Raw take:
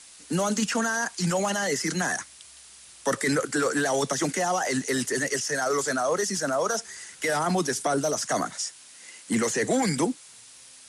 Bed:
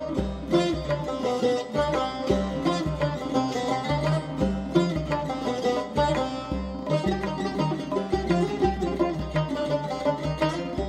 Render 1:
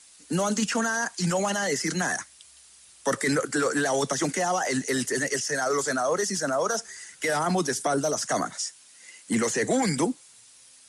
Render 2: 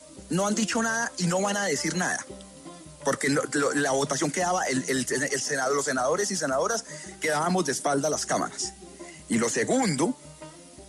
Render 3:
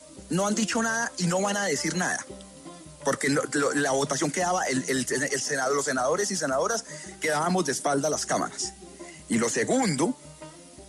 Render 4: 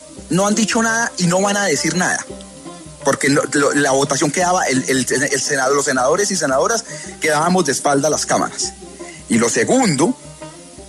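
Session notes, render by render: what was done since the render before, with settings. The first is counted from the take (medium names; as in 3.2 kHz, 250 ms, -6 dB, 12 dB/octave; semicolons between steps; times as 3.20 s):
noise reduction 6 dB, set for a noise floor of -49 dBFS
add bed -19.5 dB
no audible change
trim +10 dB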